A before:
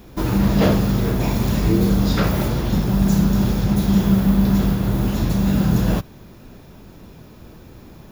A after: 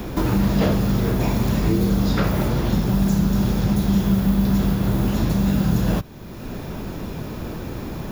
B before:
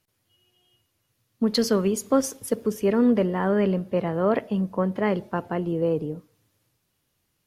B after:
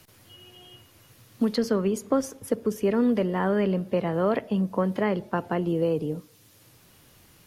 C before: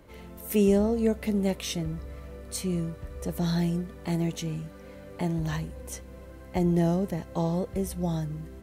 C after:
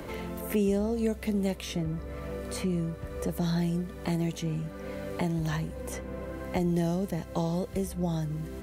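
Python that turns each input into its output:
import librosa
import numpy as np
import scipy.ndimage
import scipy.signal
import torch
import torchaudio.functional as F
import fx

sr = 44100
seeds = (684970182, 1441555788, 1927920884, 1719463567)

y = fx.band_squash(x, sr, depth_pct=70)
y = F.gain(torch.from_numpy(y), -2.0).numpy()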